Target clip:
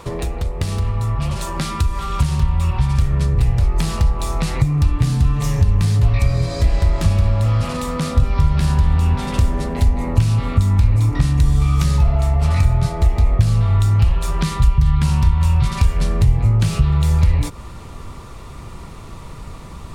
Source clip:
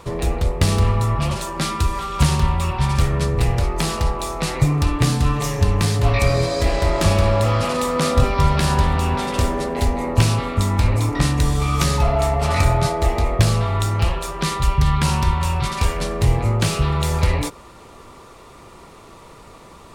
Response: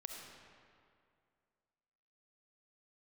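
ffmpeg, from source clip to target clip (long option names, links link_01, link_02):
-af "acompressor=threshold=-25dB:ratio=6,asubboost=boost=4:cutoff=190,volume=3.5dB"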